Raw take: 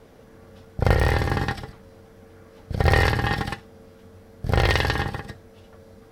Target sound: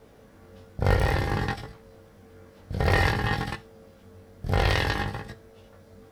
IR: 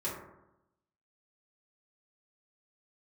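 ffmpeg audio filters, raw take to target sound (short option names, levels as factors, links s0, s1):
-af "flanger=delay=18:depth=3.1:speed=0.55,acrusher=bits=11:mix=0:aa=0.000001"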